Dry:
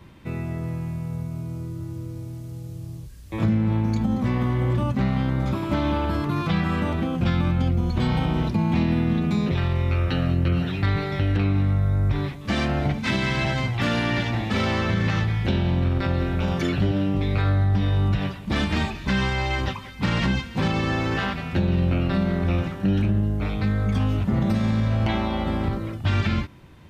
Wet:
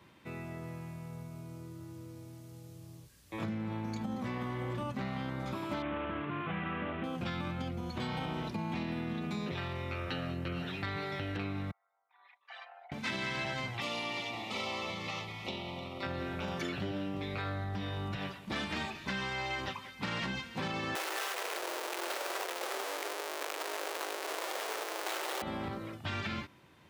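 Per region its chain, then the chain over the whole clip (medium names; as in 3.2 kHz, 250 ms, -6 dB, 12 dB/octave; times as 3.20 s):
5.82–7.04 s: CVSD coder 16 kbps + band-stop 900 Hz, Q 10
11.71–12.92 s: resonances exaggerated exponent 2 + elliptic high-pass 800 Hz, stop band 70 dB + comb 4.1 ms, depth 42%
13.80–16.03 s: Butterworth band-stop 1.6 kHz, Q 2.1 + bass shelf 340 Hz -10 dB + delay 304 ms -12.5 dB
20.95–25.42 s: Schmitt trigger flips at -39.5 dBFS + steep high-pass 350 Hz 48 dB/octave
whole clip: high-pass 87 Hz; bass shelf 270 Hz -11 dB; compression, threshold -26 dBFS; trim -6 dB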